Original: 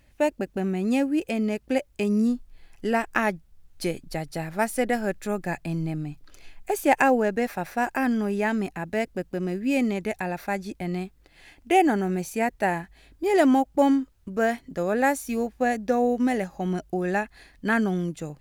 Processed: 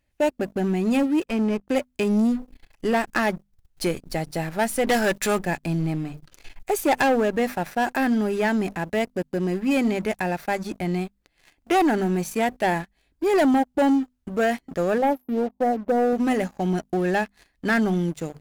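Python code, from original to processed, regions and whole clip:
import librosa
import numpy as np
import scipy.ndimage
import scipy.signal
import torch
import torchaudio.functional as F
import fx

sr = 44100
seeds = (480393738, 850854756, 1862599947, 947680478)

y = fx.chain(x, sr, fx.lower_of_two(delay_ms=0.36),
    fx.high_shelf(hz=3800.0, db=-11.5),
    fx.band_widen(depth_pct=100), at=(1.25, 1.68))
y = fx.chain(y, sr, fx.low_shelf(hz=460.0, db=-10.5),
    fx.leveller(passes=3), at=(4.87, 5.39))
y = fx.chain(y, sr, fx.brickwall_bandstop(low_hz=1100.0, high_hz=11000.0),
    fx.high_shelf(hz=6100.0, db=-11.5),
    fx.notch_comb(f0_hz=1400.0), at=(14.98, 16.13))
y = fx.hum_notches(y, sr, base_hz=50, count=5)
y = fx.leveller(y, sr, passes=3)
y = F.gain(torch.from_numpy(y), -7.0).numpy()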